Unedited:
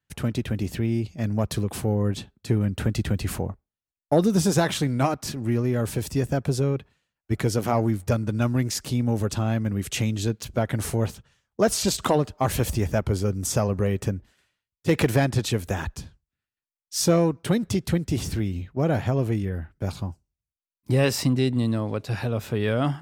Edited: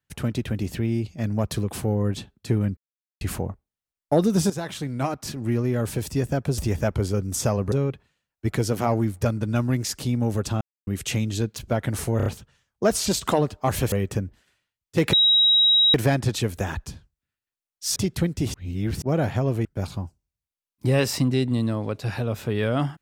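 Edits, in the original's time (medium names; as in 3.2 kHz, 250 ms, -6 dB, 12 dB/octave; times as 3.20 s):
2.77–3.21 s: mute
4.50–5.46 s: fade in, from -12.5 dB
9.47–9.73 s: mute
11.03 s: stutter 0.03 s, 4 plays
12.69–13.83 s: move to 6.58 s
15.04 s: add tone 3.83 kHz -14 dBFS 0.81 s
17.06–17.67 s: delete
18.25–18.73 s: reverse
19.36–19.70 s: delete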